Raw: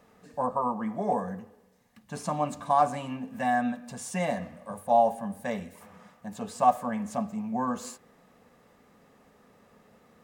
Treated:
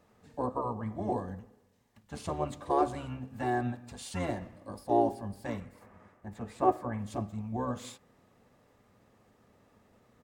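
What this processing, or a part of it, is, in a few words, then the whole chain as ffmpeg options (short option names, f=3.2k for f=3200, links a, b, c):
octave pedal: -filter_complex "[0:a]asplit=2[a][b];[b]asetrate=22050,aresample=44100,atempo=2,volume=-1dB[c];[a][c]amix=inputs=2:normalize=0,asettb=1/sr,asplit=3[d][e][f];[d]atrim=end=5.604[g];[e]atrim=start=5.6:end=6.99,asetpts=PTS-STARTPTS,afade=t=in:d=0.004:c=qsin,afade=t=out:st=1.386:d=0.004:c=qsin,highshelf=f=2.6k:t=q:w=1.5:g=-6.5[h];[f]atrim=start=6.986[i];[g][h]acrossfade=d=0.004:c1=hsin:c2=qsin[j];[j][i]acrossfade=d=0.004:c1=qsin:c2=hsin,volume=-7dB"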